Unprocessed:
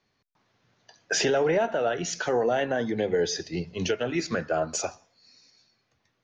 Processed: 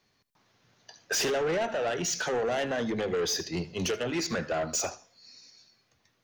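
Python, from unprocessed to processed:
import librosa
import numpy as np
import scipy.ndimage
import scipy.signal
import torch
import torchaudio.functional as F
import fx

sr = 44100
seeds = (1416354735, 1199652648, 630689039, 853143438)

y = fx.high_shelf(x, sr, hz=4900.0, db=8.0)
y = 10.0 ** (-26.0 / 20.0) * np.tanh(y / 10.0 ** (-26.0 / 20.0))
y = y + 10.0 ** (-18.5 / 20.0) * np.pad(y, (int(78 * sr / 1000.0), 0))[:len(y)]
y = y * 10.0 ** (1.0 / 20.0)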